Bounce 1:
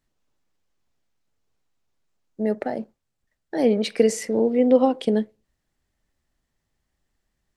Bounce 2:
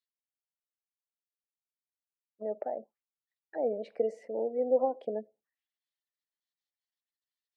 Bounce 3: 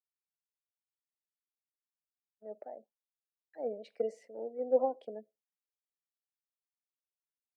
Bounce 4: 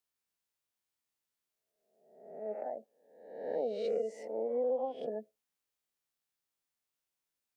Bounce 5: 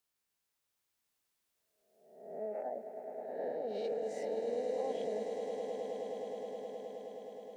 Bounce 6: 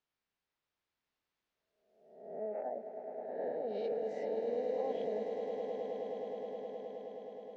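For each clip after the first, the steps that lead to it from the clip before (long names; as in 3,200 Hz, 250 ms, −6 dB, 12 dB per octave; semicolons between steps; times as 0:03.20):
gate on every frequency bin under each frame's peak −30 dB strong; envelope filter 640–4,000 Hz, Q 2.9, down, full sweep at −25 dBFS; level −4 dB
multiband upward and downward expander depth 100%; level −8 dB
peak hold with a rise ahead of every peak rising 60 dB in 0.87 s; downward compressor 12 to 1, threshold −34 dBFS, peak gain reduction 14.5 dB; level +4.5 dB
brickwall limiter −34.5 dBFS, peak gain reduction 10.5 dB; echo that builds up and dies away 105 ms, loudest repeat 8, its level −9.5 dB; level +3 dB
high-frequency loss of the air 190 metres; level +1 dB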